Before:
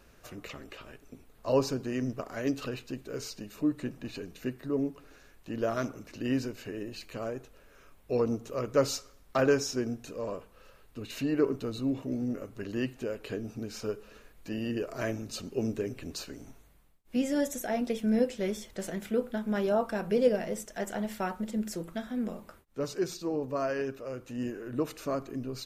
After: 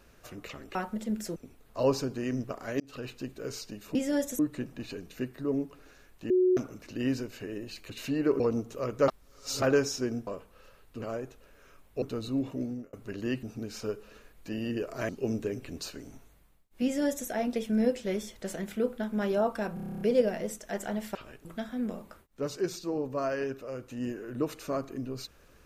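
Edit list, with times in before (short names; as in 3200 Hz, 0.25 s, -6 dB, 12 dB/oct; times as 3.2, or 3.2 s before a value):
0.75–1.05 swap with 21.22–21.83
2.49–2.8 fade in
5.55–5.82 bleep 367 Hz -20 dBFS
7.15–8.15 swap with 11.03–11.53
8.83–9.37 reverse
10.02–10.28 cut
12.11–12.44 fade out
12.94–13.43 cut
15.09–15.43 cut
17.18–17.62 copy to 3.64
20.08 stutter 0.03 s, 10 plays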